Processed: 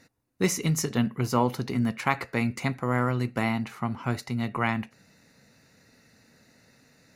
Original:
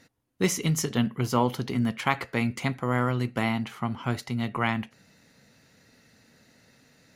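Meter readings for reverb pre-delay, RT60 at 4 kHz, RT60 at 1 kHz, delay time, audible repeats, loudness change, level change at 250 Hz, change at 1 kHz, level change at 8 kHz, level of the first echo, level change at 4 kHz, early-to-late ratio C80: no reverb, no reverb, no reverb, no echo, no echo, 0.0 dB, 0.0 dB, 0.0 dB, 0.0 dB, no echo, -2.5 dB, no reverb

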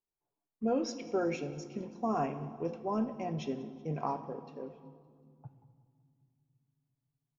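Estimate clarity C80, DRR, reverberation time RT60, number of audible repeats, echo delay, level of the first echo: 13.5 dB, 9.0 dB, 2.1 s, 3, 188 ms, -22.0 dB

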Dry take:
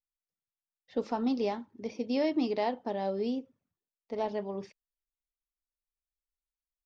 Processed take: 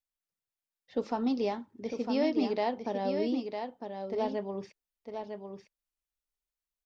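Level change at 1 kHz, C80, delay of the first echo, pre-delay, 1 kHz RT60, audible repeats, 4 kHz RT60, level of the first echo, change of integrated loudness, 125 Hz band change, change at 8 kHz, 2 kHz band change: +1.0 dB, no reverb, 954 ms, no reverb, no reverb, 1, no reverb, -6.5 dB, 0.0 dB, no reading, no reading, +1.0 dB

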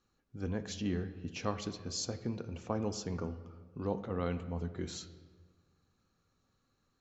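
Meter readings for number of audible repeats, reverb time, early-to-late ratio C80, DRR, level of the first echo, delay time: no echo, 1.5 s, 13.5 dB, 10.0 dB, no echo, no echo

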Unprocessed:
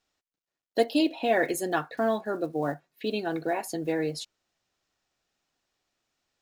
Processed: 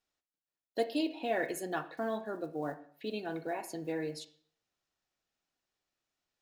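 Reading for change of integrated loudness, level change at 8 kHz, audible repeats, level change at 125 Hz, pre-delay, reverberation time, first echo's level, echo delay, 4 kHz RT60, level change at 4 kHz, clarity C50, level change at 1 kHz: -8.0 dB, -8.5 dB, no echo, -8.0 dB, 26 ms, 0.55 s, no echo, no echo, 0.50 s, -8.5 dB, 13.5 dB, -8.0 dB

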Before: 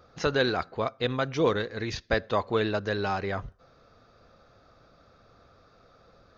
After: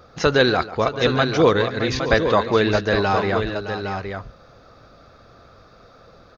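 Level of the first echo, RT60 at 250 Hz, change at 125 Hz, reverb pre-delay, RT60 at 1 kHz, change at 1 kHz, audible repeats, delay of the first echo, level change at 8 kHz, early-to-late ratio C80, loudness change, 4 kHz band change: -15.5 dB, no reverb, +9.5 dB, no reverb, no reverb, +9.5 dB, 3, 140 ms, no reading, no reverb, +9.0 dB, +9.5 dB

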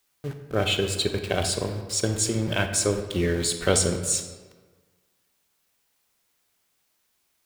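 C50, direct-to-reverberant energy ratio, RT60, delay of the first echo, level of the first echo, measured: 7.5 dB, 6.0 dB, 1.4 s, no echo, no echo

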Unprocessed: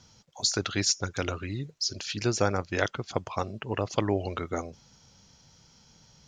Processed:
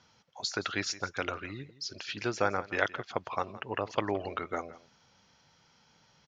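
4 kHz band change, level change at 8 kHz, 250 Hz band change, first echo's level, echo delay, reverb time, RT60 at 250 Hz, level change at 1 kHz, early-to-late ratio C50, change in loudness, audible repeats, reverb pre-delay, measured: -7.0 dB, -11.5 dB, -6.5 dB, -17.5 dB, 168 ms, no reverb, no reverb, 0.0 dB, no reverb, -4.5 dB, 1, no reverb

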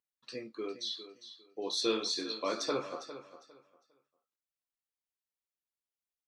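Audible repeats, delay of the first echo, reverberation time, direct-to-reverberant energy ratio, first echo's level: 2, 404 ms, no reverb, no reverb, -13.0 dB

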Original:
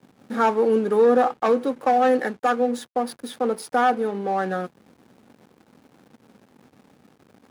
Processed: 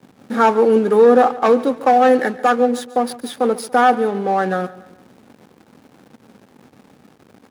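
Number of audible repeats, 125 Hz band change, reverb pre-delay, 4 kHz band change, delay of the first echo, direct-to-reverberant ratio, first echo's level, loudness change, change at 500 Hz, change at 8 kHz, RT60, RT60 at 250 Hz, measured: 3, no reading, no reverb, +6.0 dB, 142 ms, no reverb, -18.5 dB, +6.0 dB, +6.0 dB, +6.0 dB, no reverb, no reverb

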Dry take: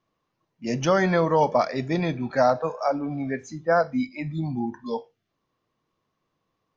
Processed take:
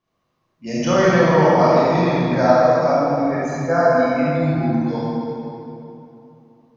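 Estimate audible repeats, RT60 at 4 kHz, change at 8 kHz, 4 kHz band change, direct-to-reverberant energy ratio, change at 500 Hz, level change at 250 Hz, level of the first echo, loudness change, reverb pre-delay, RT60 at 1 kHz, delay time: no echo, 2.0 s, no reading, +6.5 dB, -9.5 dB, +8.0 dB, +8.0 dB, no echo, +7.5 dB, 21 ms, 2.8 s, no echo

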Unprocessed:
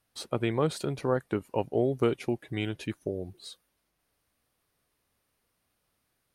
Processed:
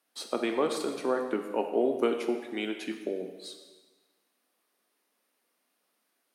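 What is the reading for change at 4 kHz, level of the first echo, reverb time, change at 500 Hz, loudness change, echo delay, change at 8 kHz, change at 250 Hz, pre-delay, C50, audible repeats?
+1.0 dB, no echo, 1.3 s, +0.5 dB, 0.0 dB, no echo, +1.0 dB, -0.5 dB, 8 ms, 7.0 dB, no echo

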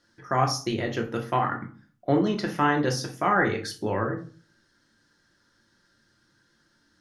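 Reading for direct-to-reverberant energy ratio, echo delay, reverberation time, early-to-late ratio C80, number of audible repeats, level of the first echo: 1.5 dB, no echo, 0.40 s, 16.5 dB, no echo, no echo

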